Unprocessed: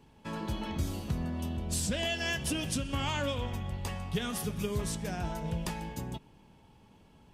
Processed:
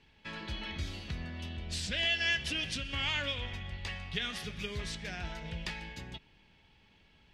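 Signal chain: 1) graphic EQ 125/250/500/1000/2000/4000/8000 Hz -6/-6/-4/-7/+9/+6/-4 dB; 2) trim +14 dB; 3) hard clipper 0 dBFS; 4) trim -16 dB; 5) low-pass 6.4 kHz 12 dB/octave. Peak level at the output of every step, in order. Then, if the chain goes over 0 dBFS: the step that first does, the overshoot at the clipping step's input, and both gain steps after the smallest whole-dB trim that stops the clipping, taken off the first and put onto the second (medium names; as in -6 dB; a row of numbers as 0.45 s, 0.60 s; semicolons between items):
-16.0 dBFS, -2.0 dBFS, -2.0 dBFS, -18.0 dBFS, -18.0 dBFS; nothing clips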